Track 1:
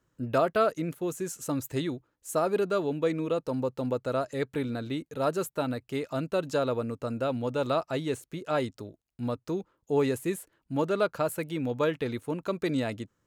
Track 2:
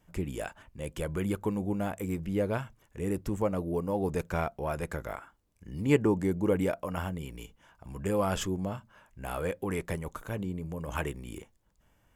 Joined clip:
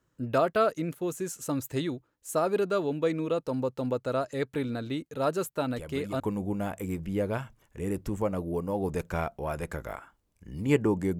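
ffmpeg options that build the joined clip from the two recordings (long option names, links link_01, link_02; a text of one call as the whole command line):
ffmpeg -i cue0.wav -i cue1.wav -filter_complex "[1:a]asplit=2[link_01][link_02];[0:a]apad=whole_dur=11.19,atrim=end=11.19,atrim=end=6.202[link_03];[link_02]atrim=start=1.398:end=6.39[link_04];[link_01]atrim=start=0.91:end=1.4,asetpts=PTS-STARTPTS,volume=-8.5dB,afade=type=in:duration=0.004:curve=hsin,afade=type=out:start_time=0.486:duration=0.004:curve=hsin,adelay=5710[link_05];[link_03][link_04]acrossfade=duration=0.004:curve1=hsin:curve2=hsin[link_06];[link_06][link_05]amix=inputs=2:normalize=0" out.wav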